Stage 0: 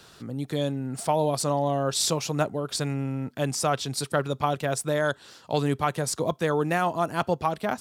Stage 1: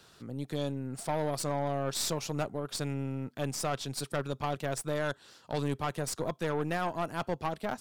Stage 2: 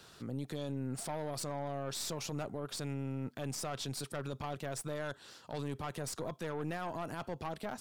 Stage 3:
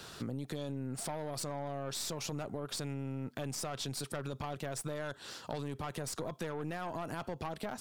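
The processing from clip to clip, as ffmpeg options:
ffmpeg -i in.wav -af "aeval=exprs='(tanh(11.2*val(0)+0.6)-tanh(0.6))/11.2':channel_layout=same,volume=-4dB" out.wav
ffmpeg -i in.wav -af "alimiter=level_in=7dB:limit=-24dB:level=0:latency=1:release=34,volume=-7dB,volume=1.5dB" out.wav
ffmpeg -i in.wav -af "acompressor=threshold=-43dB:ratio=6,volume=8dB" out.wav

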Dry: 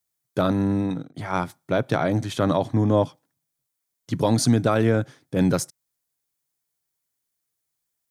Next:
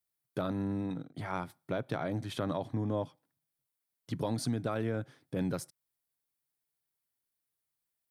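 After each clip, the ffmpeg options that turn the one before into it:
ffmpeg -i in.wav -af "equalizer=frequency=6600:width_type=o:width=0.54:gain=-7,acompressor=threshold=-29dB:ratio=2,volume=-6dB" out.wav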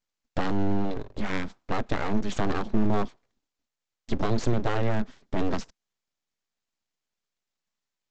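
ffmpeg -i in.wav -af "equalizer=frequency=91:width=1.6:gain=11.5,aresample=16000,aeval=exprs='abs(val(0))':channel_layout=same,aresample=44100,volume=7.5dB" out.wav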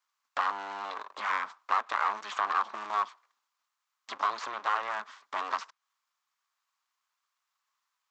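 ffmpeg -i in.wav -filter_complex "[0:a]acrossover=split=2100|4300[link_01][link_02][link_03];[link_01]acompressor=threshold=-27dB:ratio=4[link_04];[link_02]acompressor=threshold=-49dB:ratio=4[link_05];[link_03]acompressor=threshold=-59dB:ratio=4[link_06];[link_04][link_05][link_06]amix=inputs=3:normalize=0,highpass=frequency=1100:width_type=q:width=4.7,volume=3.5dB" out.wav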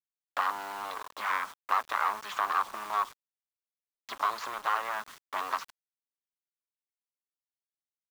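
ffmpeg -i in.wav -af "acrusher=bits=7:mix=0:aa=0.000001" out.wav

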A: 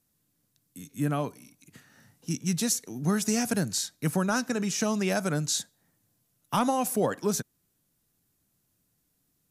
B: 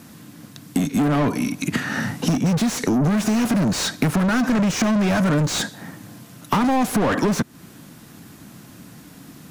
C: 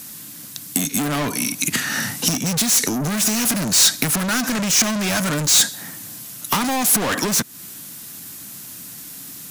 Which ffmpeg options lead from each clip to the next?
ffmpeg -i in.wav -filter_complex "[0:a]lowshelf=frequency=330:width_type=q:width=1.5:gain=7,asplit=2[link_01][link_02];[link_02]highpass=frequency=720:poles=1,volume=37dB,asoftclip=type=tanh:threshold=-9dB[link_03];[link_01][link_03]amix=inputs=2:normalize=0,lowpass=frequency=1400:poles=1,volume=-6dB,acompressor=threshold=-27dB:ratio=5,volume=8.5dB" out.wav
ffmpeg -i in.wav -af "crystalizer=i=8:c=0,volume=-5dB" out.wav

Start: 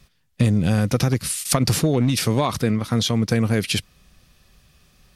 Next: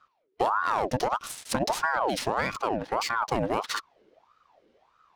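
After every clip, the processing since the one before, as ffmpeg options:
ffmpeg -i in.wav -af "adynamicsmooth=sensitivity=5:basefreq=2700,aeval=exprs='val(0)*sin(2*PI*830*n/s+830*0.55/1.6*sin(2*PI*1.6*n/s))':channel_layout=same,volume=-5dB" out.wav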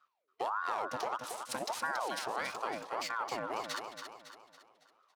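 ffmpeg -i in.wav -af "highpass=frequency=580:poles=1,aecho=1:1:278|556|834|1112|1390:0.447|0.201|0.0905|0.0407|0.0183,volume=-8dB" out.wav

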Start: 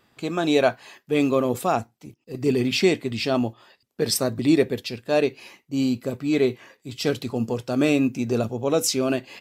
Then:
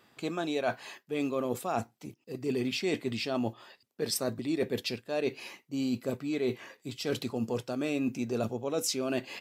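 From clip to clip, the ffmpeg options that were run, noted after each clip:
ffmpeg -i in.wav -af "highpass=frequency=150:poles=1,areverse,acompressor=threshold=-28dB:ratio=6,areverse" out.wav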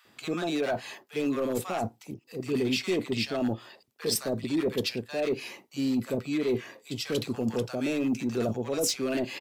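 ffmpeg -i in.wav -filter_complex "[0:a]volume=25.5dB,asoftclip=hard,volume=-25.5dB,acrossover=split=960[link_01][link_02];[link_01]adelay=50[link_03];[link_03][link_02]amix=inputs=2:normalize=0,volume=4dB" out.wav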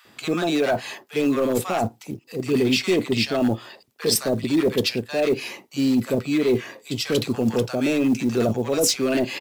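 ffmpeg -i in.wav -af "acrusher=bits=8:mode=log:mix=0:aa=0.000001,volume=7.5dB" out.wav

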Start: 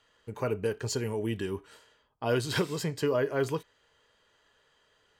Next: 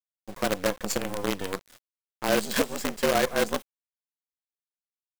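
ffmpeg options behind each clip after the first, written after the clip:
ffmpeg -i in.wav -af "afreqshift=92,aexciter=amount=1.2:drive=6.4:freq=6700,acrusher=bits=5:dc=4:mix=0:aa=0.000001,volume=3dB" out.wav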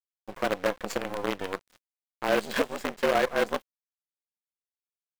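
ffmpeg -i in.wav -filter_complex "[0:a]bass=frequency=250:gain=-8,treble=frequency=4000:gain=-12,asplit=2[link_01][link_02];[link_02]alimiter=limit=-24dB:level=0:latency=1:release=192,volume=-1dB[link_03];[link_01][link_03]amix=inputs=2:normalize=0,aeval=exprs='sgn(val(0))*max(abs(val(0))-0.00596,0)':channel_layout=same,volume=-1.5dB" out.wav

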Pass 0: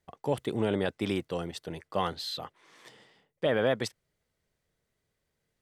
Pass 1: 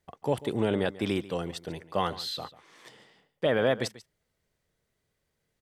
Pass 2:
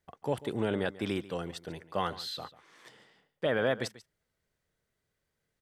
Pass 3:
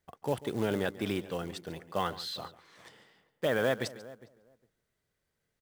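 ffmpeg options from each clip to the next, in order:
ffmpeg -i in.wav -af "aecho=1:1:141:0.133,volume=1.5dB" out.wav
ffmpeg -i in.wav -af "equalizer=frequency=1500:width=2.6:gain=4,volume=-4dB" out.wav
ffmpeg -i in.wav -filter_complex "[0:a]asplit=2[link_01][link_02];[link_02]adelay=408,lowpass=frequency=1000:poles=1,volume=-17.5dB,asplit=2[link_03][link_04];[link_04]adelay=408,lowpass=frequency=1000:poles=1,volume=0.16[link_05];[link_01][link_03][link_05]amix=inputs=3:normalize=0,acrusher=bits=5:mode=log:mix=0:aa=0.000001" out.wav

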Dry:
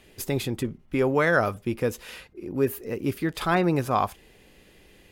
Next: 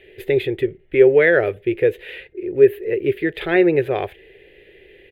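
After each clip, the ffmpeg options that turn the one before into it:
ffmpeg -i in.wav -af "firequalizer=gain_entry='entry(140,0);entry(230,-12);entry(380,15);entry(670,1);entry(1100,-14);entry(1800,11);entry(3600,2);entry(5400,-23);entry(13000,-10)':delay=0.05:min_phase=1" out.wav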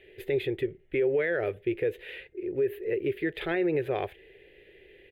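ffmpeg -i in.wav -af "alimiter=limit=-12dB:level=0:latency=1:release=70,volume=-7dB" out.wav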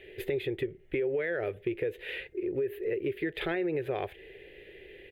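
ffmpeg -i in.wav -af "acompressor=threshold=-35dB:ratio=3,volume=4.5dB" out.wav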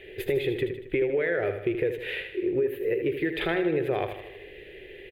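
ffmpeg -i in.wav -af "aecho=1:1:78|156|234|312|390|468:0.376|0.195|0.102|0.0528|0.0275|0.0143,volume=4.5dB" out.wav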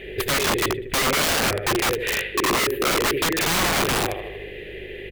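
ffmpeg -i in.wav -af "aeval=exprs='(mod(17.8*val(0)+1,2)-1)/17.8':channel_layout=same,aeval=exprs='val(0)+0.00224*(sin(2*PI*50*n/s)+sin(2*PI*2*50*n/s)/2+sin(2*PI*3*50*n/s)/3+sin(2*PI*4*50*n/s)/4+sin(2*PI*5*50*n/s)/5)':channel_layout=same,volume=9dB" out.wav

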